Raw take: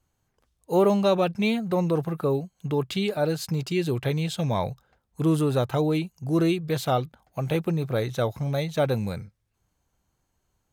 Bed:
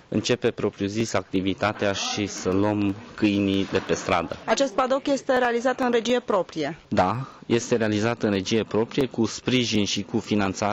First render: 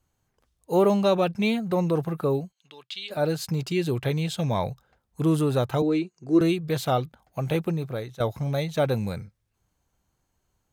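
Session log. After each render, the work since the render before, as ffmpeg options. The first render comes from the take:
-filter_complex "[0:a]asplit=3[a][b][c];[a]afade=t=out:st=2.51:d=0.02[d];[b]bandpass=f=3.6k:t=q:w=1.8,afade=t=in:st=2.51:d=0.02,afade=t=out:st=3.1:d=0.02[e];[c]afade=t=in:st=3.1:d=0.02[f];[d][e][f]amix=inputs=3:normalize=0,asettb=1/sr,asplit=3[g][h][i];[g]atrim=end=5.824[j];[h]atrim=start=5.82:end=6.41,asetpts=PTS-STARTPTS,afade=t=in:d=0.004:c=qsin,afade=t=out:st=0.586:d=0.004:c=qsin,highpass=240,equalizer=f=360:t=q:w=4:g=10,equalizer=f=580:t=q:w=4:g=-4,equalizer=f=850:t=q:w=4:g=-9,equalizer=f=3.2k:t=q:w=4:g=-8,equalizer=f=5.7k:t=q:w=4:g=-4,lowpass=f=7.2k:w=0.5412,lowpass=f=7.2k:w=1.3066[k];[i]atrim=start=6.406[l];[j][k]acrossfade=d=0.004:c1=hsin:c2=qsin[m];[m][l]acrossfade=d=0.004:c1=qsin:c2=hsin,asplit=2[n][o];[n]atrim=end=8.2,asetpts=PTS-STARTPTS,afade=t=out:st=7.63:d=0.57:silence=0.188365[p];[o]atrim=start=8.2,asetpts=PTS-STARTPTS,afade=t=in:d=0.004:c=hsin:silence=0.188365[q];[p][q]concat=n=2:v=0:a=1"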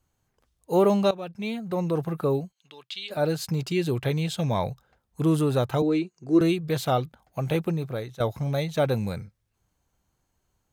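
-filter_complex "[0:a]asplit=2[a][b];[a]atrim=end=1.11,asetpts=PTS-STARTPTS,afade=t=out:st=1.106:d=0.004:c=hsin:silence=0.149624[c];[b]atrim=start=1.11,asetpts=PTS-STARTPTS,afade=t=in:d=1.06:silence=0.149624[d];[c][d]concat=n=2:v=0:a=1"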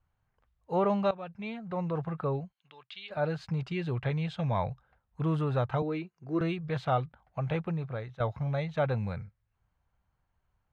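-af "lowpass=2k,equalizer=f=320:t=o:w=1.6:g=-11.5"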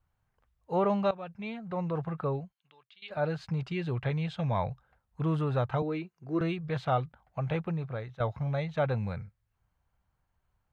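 -filter_complex "[0:a]asplit=2[a][b];[a]atrim=end=3.02,asetpts=PTS-STARTPTS,afade=t=out:st=2.27:d=0.75:silence=0.141254[c];[b]atrim=start=3.02,asetpts=PTS-STARTPTS,afade=t=in:d=0.004:c=hsin:silence=0.141254[d];[c][d]concat=n=2:v=0:a=1"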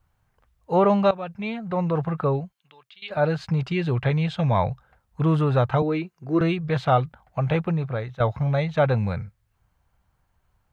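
-af "volume=8.5dB"

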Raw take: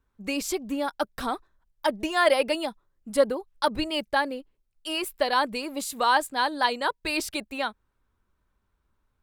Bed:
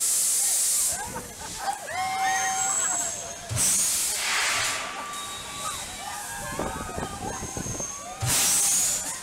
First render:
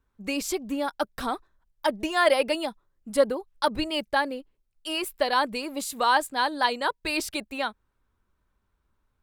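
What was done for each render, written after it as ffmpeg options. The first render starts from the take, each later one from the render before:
-af anull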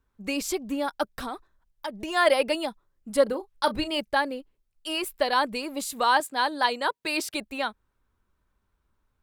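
-filter_complex "[0:a]asplit=3[a][b][c];[a]afade=t=out:st=1.08:d=0.02[d];[b]acompressor=threshold=-30dB:ratio=4:attack=3.2:release=140:knee=1:detection=peak,afade=t=in:st=1.08:d=0.02,afade=t=out:st=2.07:d=0.02[e];[c]afade=t=in:st=2.07:d=0.02[f];[d][e][f]amix=inputs=3:normalize=0,asettb=1/sr,asplit=3[g][h][i];[g]atrim=end=3.234[j];[h]atrim=start=3.23:end=4,asetpts=PTS-STARTPTS,afade=t=in:d=0.004:c=qsin,afade=t=out:st=0.766:d=0.004:c=qsin,asplit=2[k][l];[l]adelay=34,volume=-13dB[m];[k][m]amix=inputs=2:normalize=0,atrim=end_sample=33957[n];[i]atrim=start=3.996[o];[j][n]acrossfade=d=0.004:c1=hsin:c2=qsin[p];[p][o]acrossfade=d=0.004:c1=qsin:c2=hsin,asettb=1/sr,asplit=3[q][r][s];[q]atrim=end=6.204[t];[r]atrim=start=6.2:end=7.34,asetpts=PTS-STARTPTS,afade=t=in:d=0.004:c=qsin,afade=t=out:st=1.136:d=0.004:c=qsin,highpass=200[u];[s]atrim=start=7.336[v];[t][u]acrossfade=d=0.004:c1=hsin:c2=qsin[w];[w][v]acrossfade=d=0.004:c1=qsin:c2=hsin"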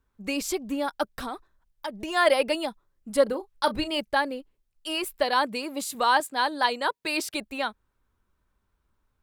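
-filter_complex "[0:a]asettb=1/sr,asplit=3[a][b][c];[a]atrim=end=5.234[d];[b]atrim=start=5.23:end=5.95,asetpts=PTS-STARTPTS,afade=t=in:d=0.004:c=qsin,afade=t=out:st=0.716:d=0.004:c=qsin,highpass=f=86:w=0.5412,highpass=f=86:w=1.3066[e];[c]atrim=start=5.946[f];[d][e]acrossfade=d=0.004:c1=hsin:c2=qsin[g];[g][f]acrossfade=d=0.004:c1=qsin:c2=hsin"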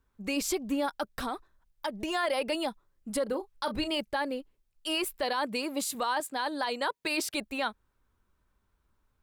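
-af "acompressor=threshold=-23dB:ratio=3,alimiter=limit=-21dB:level=0:latency=1:release=10"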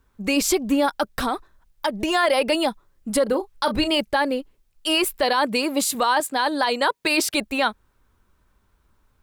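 -af "volume=10dB"

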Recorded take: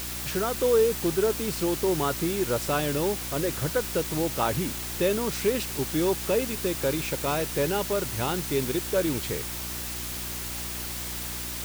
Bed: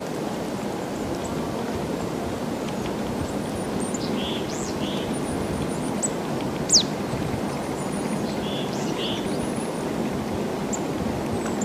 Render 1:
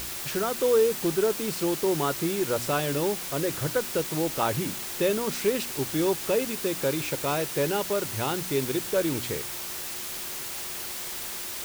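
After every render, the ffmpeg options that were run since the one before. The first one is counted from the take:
-af "bandreject=f=60:t=h:w=4,bandreject=f=120:t=h:w=4,bandreject=f=180:t=h:w=4,bandreject=f=240:t=h:w=4,bandreject=f=300:t=h:w=4"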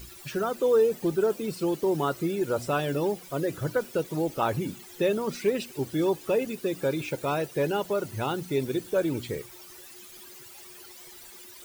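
-af "afftdn=nr=16:nf=-35"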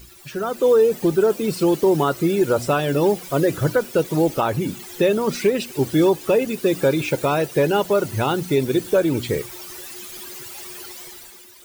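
-af "dynaudnorm=f=110:g=11:m=11dB,alimiter=limit=-8.5dB:level=0:latency=1:release=382"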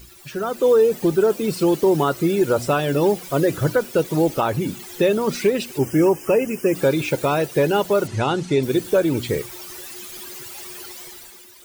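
-filter_complex "[0:a]asplit=3[a][b][c];[a]afade=t=out:st=5.78:d=0.02[d];[b]asuperstop=centerf=3900:order=12:qfactor=2.2,afade=t=in:st=5.78:d=0.02,afade=t=out:st=6.74:d=0.02[e];[c]afade=t=in:st=6.74:d=0.02[f];[d][e][f]amix=inputs=3:normalize=0,asettb=1/sr,asplit=3[g][h][i];[g]atrim=end=8.074[j];[h]atrim=start=8.07:end=8.63,asetpts=PTS-STARTPTS,afade=t=in:d=0.004:c=qsin,afade=t=out:st=0.556:d=0.004:c=qsin,lowpass=f=8.1k:w=0.5412,lowpass=f=8.1k:w=1.3066[k];[i]atrim=start=8.626[l];[j][k]acrossfade=d=0.004:c1=hsin:c2=qsin[m];[m][l]acrossfade=d=0.004:c1=qsin:c2=hsin"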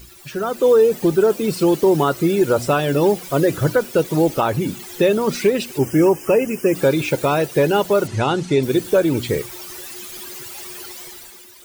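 -af "volume=2dB"

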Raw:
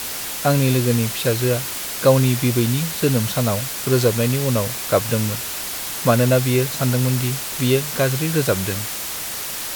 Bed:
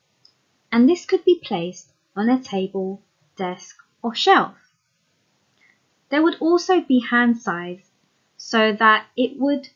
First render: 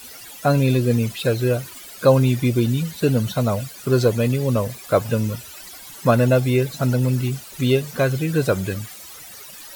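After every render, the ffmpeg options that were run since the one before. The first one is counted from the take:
-af "afftdn=nr=16:nf=-28"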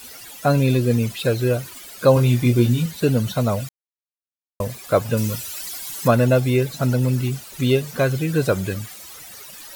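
-filter_complex "[0:a]asettb=1/sr,asplit=3[a][b][c];[a]atrim=end=2.144[d];[b]atrim=start=2.14:end=2.86,asetpts=PTS-STARTPTS,afade=t=in:d=0.004:c=qsin,afade=t=out:st=0.716:d=0.004:c=qsin,asplit=2[e][f];[f]adelay=25,volume=-5dB[g];[e][g]amix=inputs=2:normalize=0,atrim=end_sample=31752[h];[c]atrim=start=2.856[i];[d][h]acrossfade=d=0.004:c1=hsin:c2=qsin[j];[j][i]acrossfade=d=0.004:c1=qsin:c2=hsin,asettb=1/sr,asplit=3[k][l][m];[k]atrim=end=5.174[n];[l]atrim=start=5.17:end=6.08,asetpts=PTS-STARTPTS,afade=t=in:d=0.004:c=qsin,afade=t=out:st=0.906:d=0.004:c=qsin,highshelf=f=2.9k:g=8.5[o];[m]atrim=start=6.076[p];[n][o]acrossfade=d=0.004:c1=hsin:c2=qsin[q];[q][p]acrossfade=d=0.004:c1=qsin:c2=hsin,asplit=3[r][s][t];[r]atrim=end=3.69,asetpts=PTS-STARTPTS,afade=t=out:st=3.686:d=0.004:c=hsin[u];[s]atrim=start=3.69:end=4.6,asetpts=PTS-STARTPTS,volume=0[v];[t]atrim=start=4.6,asetpts=PTS-STARTPTS,afade=t=in:d=0.004:c=hsin[w];[u][v][w]concat=n=3:v=0:a=1"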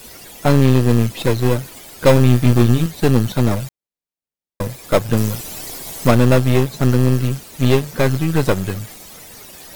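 -filter_complex "[0:a]aeval=exprs='0.75*(cos(1*acos(clip(val(0)/0.75,-1,1)))-cos(1*PI/2))+0.0944*(cos(8*acos(clip(val(0)/0.75,-1,1)))-cos(8*PI/2))':c=same,asplit=2[a][b];[b]acrusher=samples=30:mix=1:aa=0.000001,volume=-7dB[c];[a][c]amix=inputs=2:normalize=0"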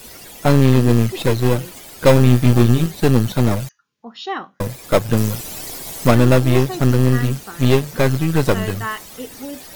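-filter_complex "[1:a]volume=-12dB[a];[0:a][a]amix=inputs=2:normalize=0"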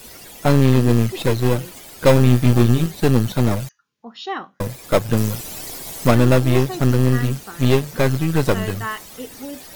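-af "volume=-1.5dB"

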